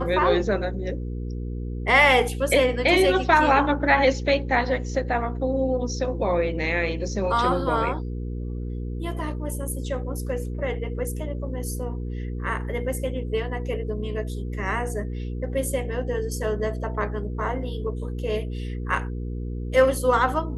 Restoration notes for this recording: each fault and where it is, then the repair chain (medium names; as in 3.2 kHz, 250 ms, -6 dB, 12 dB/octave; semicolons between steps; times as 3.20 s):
hum 60 Hz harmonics 8 -30 dBFS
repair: de-hum 60 Hz, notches 8